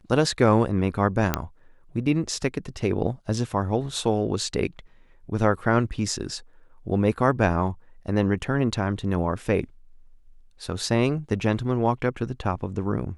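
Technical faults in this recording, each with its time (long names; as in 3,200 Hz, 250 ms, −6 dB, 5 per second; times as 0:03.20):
0:01.34: click −6 dBFS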